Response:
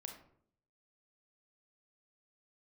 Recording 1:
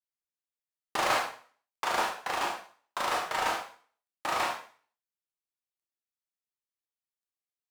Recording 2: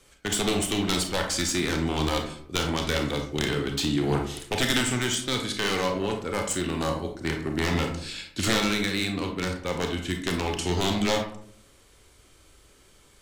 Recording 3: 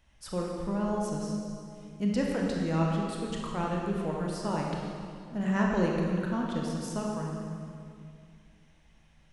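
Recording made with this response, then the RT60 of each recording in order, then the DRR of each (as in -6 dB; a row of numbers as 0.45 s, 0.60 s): 2; 0.45 s, 0.65 s, 2.4 s; -0.5 dB, 3.0 dB, -2.0 dB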